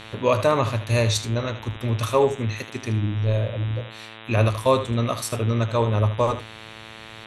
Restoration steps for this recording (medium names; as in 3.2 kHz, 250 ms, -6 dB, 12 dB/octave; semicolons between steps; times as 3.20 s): de-hum 110.5 Hz, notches 35; inverse comb 77 ms -12.5 dB